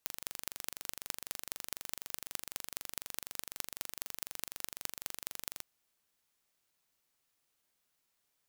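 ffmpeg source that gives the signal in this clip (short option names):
-f lavfi -i "aevalsrc='0.398*eq(mod(n,1838),0)*(0.5+0.5*eq(mod(n,9190),0))':d=5.57:s=44100"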